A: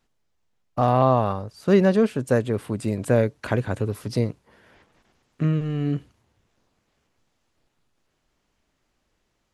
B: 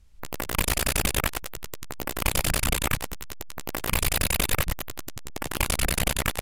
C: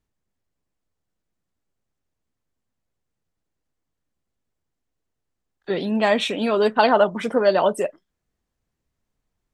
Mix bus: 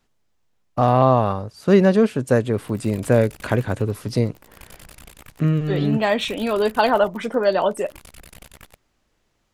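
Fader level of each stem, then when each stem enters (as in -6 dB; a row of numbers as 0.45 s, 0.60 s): +3.0 dB, -19.5 dB, -1.0 dB; 0.00 s, 2.35 s, 0.00 s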